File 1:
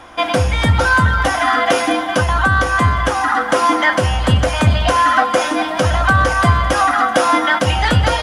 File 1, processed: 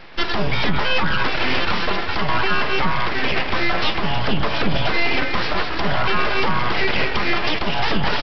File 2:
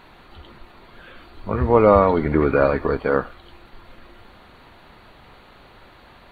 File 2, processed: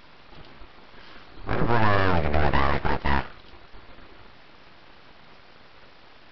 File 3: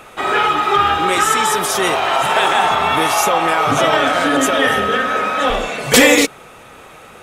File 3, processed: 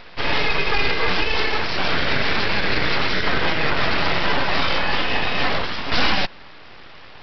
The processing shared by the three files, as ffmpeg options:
-af "alimiter=limit=-7.5dB:level=0:latency=1:release=85,aresample=11025,aeval=exprs='abs(val(0))':c=same,aresample=44100"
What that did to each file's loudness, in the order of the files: -6.0, -6.0, -6.5 LU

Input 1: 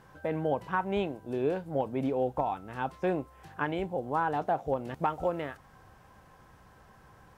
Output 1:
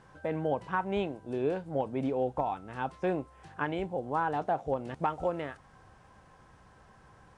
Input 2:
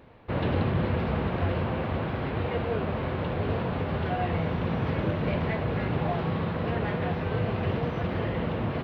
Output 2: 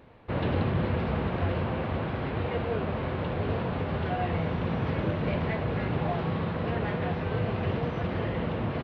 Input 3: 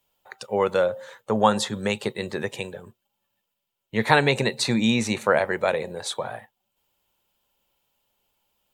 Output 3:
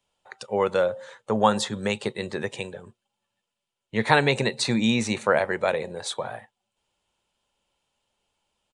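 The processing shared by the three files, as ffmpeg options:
-af "aresample=22050,aresample=44100,volume=-1dB"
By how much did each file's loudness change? -1.0, -1.0, -1.0 LU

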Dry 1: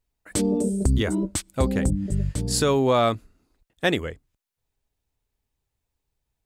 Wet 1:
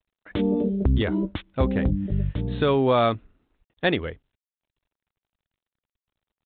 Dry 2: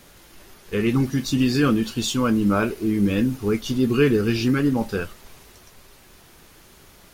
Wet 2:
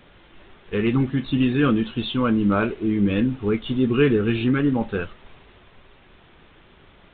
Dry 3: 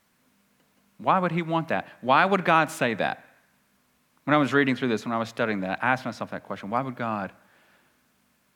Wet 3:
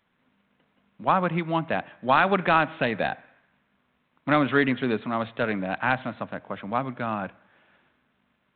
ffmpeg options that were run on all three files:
-ar 8000 -c:a adpcm_g726 -b:a 40k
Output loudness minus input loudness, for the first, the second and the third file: -0.5, 0.0, -0.5 LU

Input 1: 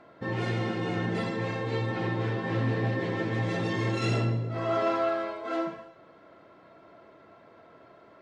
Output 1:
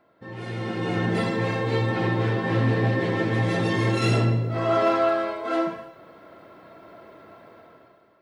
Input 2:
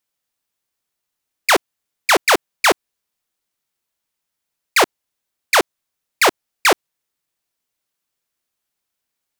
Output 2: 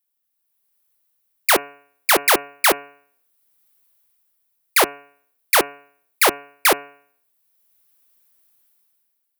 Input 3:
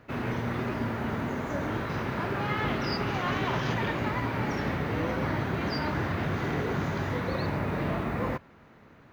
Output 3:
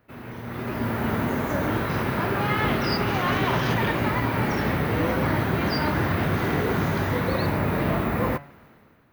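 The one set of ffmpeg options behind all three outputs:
-af "dynaudnorm=f=160:g=9:m=15dB,aexciter=amount=4:drive=4.7:freq=9.4k,bandreject=f=142.2:t=h:w=4,bandreject=f=284.4:t=h:w=4,bandreject=f=426.6:t=h:w=4,bandreject=f=568.8:t=h:w=4,bandreject=f=711:t=h:w=4,bandreject=f=853.2:t=h:w=4,bandreject=f=995.4:t=h:w=4,bandreject=f=1.1376k:t=h:w=4,bandreject=f=1.2798k:t=h:w=4,bandreject=f=1.422k:t=h:w=4,bandreject=f=1.5642k:t=h:w=4,bandreject=f=1.7064k:t=h:w=4,bandreject=f=1.8486k:t=h:w=4,bandreject=f=1.9908k:t=h:w=4,bandreject=f=2.133k:t=h:w=4,bandreject=f=2.2752k:t=h:w=4,bandreject=f=2.4174k:t=h:w=4,bandreject=f=2.5596k:t=h:w=4,bandreject=f=2.7018k:t=h:w=4,bandreject=f=2.844k:t=h:w=4,volume=-8dB"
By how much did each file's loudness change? +5.5, -1.0, +6.0 LU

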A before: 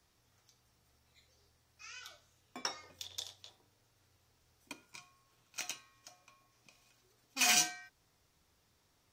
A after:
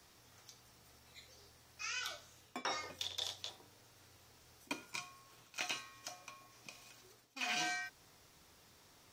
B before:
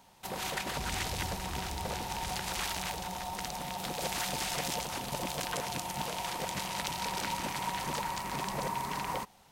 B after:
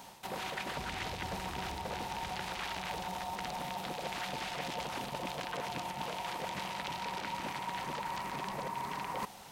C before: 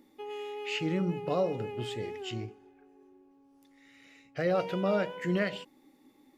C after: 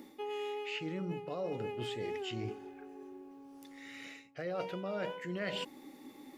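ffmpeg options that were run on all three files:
-filter_complex "[0:a]acrossover=split=4100[a][b];[b]acompressor=threshold=-50dB:ratio=4:attack=1:release=60[c];[a][c]amix=inputs=2:normalize=0,lowshelf=f=100:g=-9,areverse,acompressor=threshold=-46dB:ratio=8,areverse,volume=10dB"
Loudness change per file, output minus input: -7.5, -3.5, -7.5 LU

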